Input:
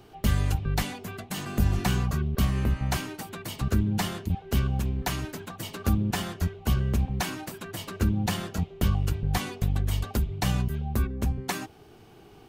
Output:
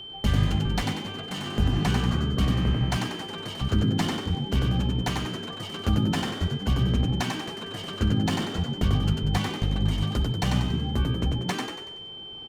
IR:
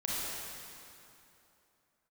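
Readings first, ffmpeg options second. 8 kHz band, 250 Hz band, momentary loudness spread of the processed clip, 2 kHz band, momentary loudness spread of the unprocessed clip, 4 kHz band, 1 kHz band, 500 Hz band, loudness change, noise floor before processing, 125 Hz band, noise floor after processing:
-3.0 dB, +3.5 dB, 9 LU, +1.5 dB, 10 LU, +7.0 dB, +2.0 dB, +2.5 dB, +2.0 dB, -52 dBFS, +2.0 dB, -40 dBFS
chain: -filter_complex "[0:a]adynamicsmooth=sensitivity=8:basefreq=4.6k,asplit=7[a][b][c][d][e][f][g];[b]adelay=94,afreqshift=55,volume=-4dB[h];[c]adelay=188,afreqshift=110,volume=-10.9dB[i];[d]adelay=282,afreqshift=165,volume=-17.9dB[j];[e]adelay=376,afreqshift=220,volume=-24.8dB[k];[f]adelay=470,afreqshift=275,volume=-31.7dB[l];[g]adelay=564,afreqshift=330,volume=-38.7dB[m];[a][h][i][j][k][l][m]amix=inputs=7:normalize=0,aeval=exprs='val(0)+0.0126*sin(2*PI*3100*n/s)':c=same"

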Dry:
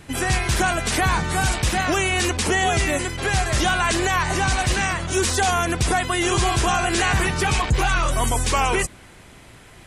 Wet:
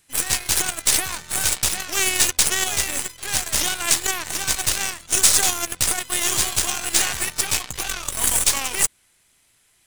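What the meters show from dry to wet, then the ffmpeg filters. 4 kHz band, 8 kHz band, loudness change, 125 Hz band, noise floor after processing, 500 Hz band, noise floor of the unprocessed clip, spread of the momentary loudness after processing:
+2.5 dB, +8.0 dB, +1.0 dB, -14.5 dB, -61 dBFS, -10.0 dB, -46 dBFS, 7 LU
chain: -af "crystalizer=i=10:c=0,aeval=exprs='2.51*(cos(1*acos(clip(val(0)/2.51,-1,1)))-cos(1*PI/2))+0.2*(cos(6*acos(clip(val(0)/2.51,-1,1)))-cos(6*PI/2))+0.316*(cos(7*acos(clip(val(0)/2.51,-1,1)))-cos(7*PI/2))':c=same,volume=-8.5dB"

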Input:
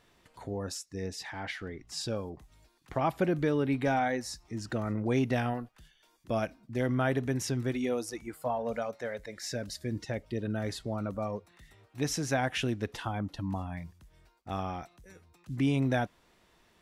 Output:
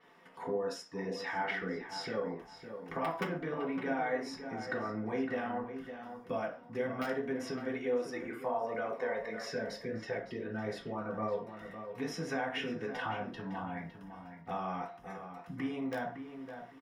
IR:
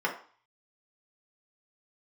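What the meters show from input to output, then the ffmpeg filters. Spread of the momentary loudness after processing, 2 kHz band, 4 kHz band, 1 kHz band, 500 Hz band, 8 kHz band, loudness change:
11 LU, -1.0 dB, -5.5 dB, -2.5 dB, -2.0 dB, -13.5 dB, -4.5 dB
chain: -filter_complex "[0:a]aeval=exprs='(mod(7.5*val(0)+1,2)-1)/7.5':c=same,aecho=1:1:4.3:0.33,asubboost=boost=3.5:cutoff=100,acompressor=threshold=-36dB:ratio=6,flanger=delay=8.9:depth=5.5:regen=74:speed=1.6:shape=sinusoidal,bandreject=f=60:t=h:w=6,bandreject=f=120:t=h:w=6,asplit=2[a][b];[b]adelay=559,lowpass=f=2.6k:p=1,volume=-9dB,asplit=2[c][d];[d]adelay=559,lowpass=f=2.6k:p=1,volume=0.24,asplit=2[e][f];[f]adelay=559,lowpass=f=2.6k:p=1,volume=0.24[g];[a][c][e][g]amix=inputs=4:normalize=0[h];[1:a]atrim=start_sample=2205,atrim=end_sample=6615[i];[h][i]afir=irnorm=-1:irlink=0,adynamicequalizer=threshold=0.00112:dfrequency=5900:dqfactor=0.7:tfrequency=5900:tqfactor=0.7:attack=5:release=100:ratio=0.375:range=3:mode=cutabove:tftype=highshelf"

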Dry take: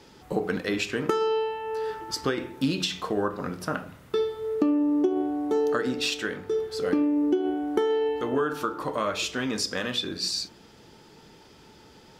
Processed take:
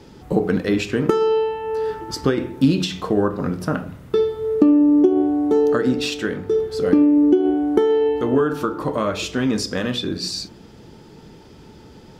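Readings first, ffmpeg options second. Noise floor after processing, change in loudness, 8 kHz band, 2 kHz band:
-44 dBFS, +8.0 dB, +1.5 dB, +2.5 dB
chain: -af "lowshelf=f=490:g=11,volume=1.5dB"

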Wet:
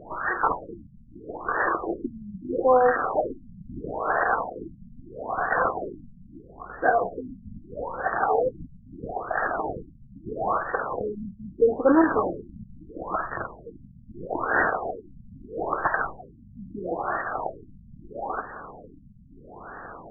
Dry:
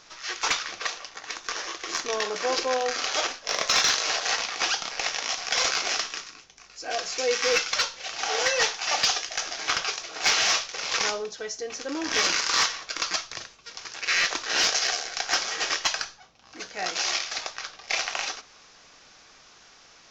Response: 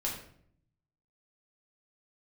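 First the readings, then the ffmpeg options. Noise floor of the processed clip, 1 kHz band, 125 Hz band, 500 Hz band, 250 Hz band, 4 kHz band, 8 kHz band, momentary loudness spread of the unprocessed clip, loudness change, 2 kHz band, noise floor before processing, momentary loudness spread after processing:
-50 dBFS, +5.0 dB, +12.0 dB, +6.0 dB, +12.0 dB, under -40 dB, under -40 dB, 12 LU, -1.0 dB, -2.5 dB, -53 dBFS, 21 LU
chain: -af "acrusher=bits=2:mode=log:mix=0:aa=0.000001,alimiter=level_in=26.5dB:limit=-1dB:release=50:level=0:latency=1,afftfilt=real='re*lt(b*sr/1024,230*pow(1900/230,0.5+0.5*sin(2*PI*0.77*pts/sr)))':imag='im*lt(b*sr/1024,230*pow(1900/230,0.5+0.5*sin(2*PI*0.77*pts/sr)))':win_size=1024:overlap=0.75,volume=-8.5dB"

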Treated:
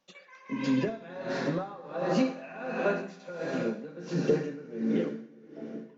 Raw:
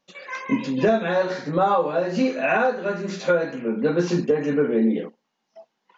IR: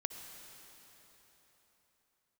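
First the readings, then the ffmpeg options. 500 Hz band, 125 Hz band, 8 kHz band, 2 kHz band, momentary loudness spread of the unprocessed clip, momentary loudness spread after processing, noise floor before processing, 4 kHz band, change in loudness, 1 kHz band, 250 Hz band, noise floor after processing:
-10.0 dB, -6.0 dB, n/a, -11.0 dB, 7 LU, 14 LU, -76 dBFS, -7.0 dB, -9.5 dB, -13.5 dB, -7.0 dB, -54 dBFS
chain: -filter_complex "[0:a]acrossover=split=210[a][b];[b]acompressor=threshold=-21dB:ratio=6[c];[a][c]amix=inputs=2:normalize=0[d];[1:a]atrim=start_sample=2205[e];[d][e]afir=irnorm=-1:irlink=0,aeval=exprs='val(0)*pow(10,-20*(0.5-0.5*cos(2*PI*1.4*n/s))/20)':c=same"

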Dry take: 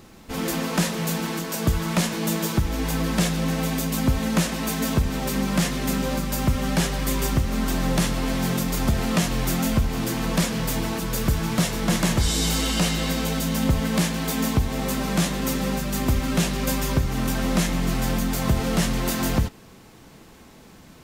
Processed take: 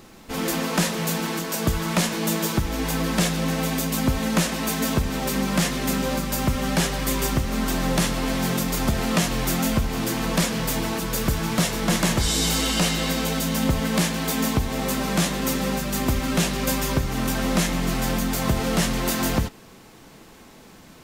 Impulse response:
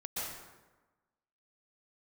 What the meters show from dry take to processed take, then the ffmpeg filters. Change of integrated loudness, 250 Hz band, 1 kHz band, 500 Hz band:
+0.5 dB, 0.0 dB, +2.0 dB, +1.5 dB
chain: -af "equalizer=f=71:t=o:w=2.8:g=-5,volume=2dB"

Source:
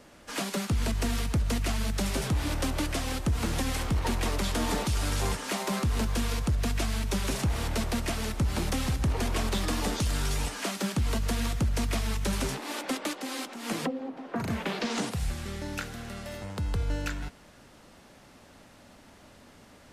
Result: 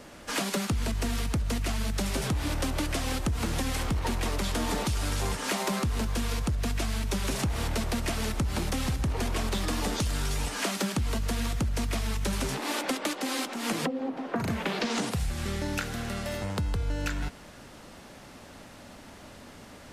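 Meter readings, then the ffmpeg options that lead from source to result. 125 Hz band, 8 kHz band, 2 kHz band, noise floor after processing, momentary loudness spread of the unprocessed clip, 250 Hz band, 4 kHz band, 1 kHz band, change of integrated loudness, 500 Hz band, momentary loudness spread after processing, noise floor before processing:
-0.5 dB, +0.5 dB, +1.0 dB, -48 dBFS, 7 LU, +0.5 dB, +1.0 dB, +1.0 dB, 0.0 dB, +1.0 dB, 18 LU, -54 dBFS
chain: -af "acompressor=threshold=-32dB:ratio=6,volume=6dB"

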